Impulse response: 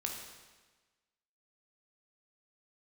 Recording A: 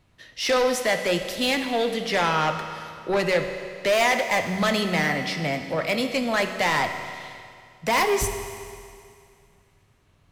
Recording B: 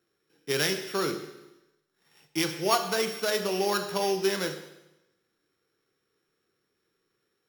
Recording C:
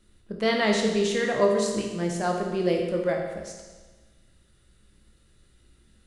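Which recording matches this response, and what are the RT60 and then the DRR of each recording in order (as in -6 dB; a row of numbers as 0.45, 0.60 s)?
C; 2.3, 0.95, 1.3 s; 5.5, 6.0, 0.5 dB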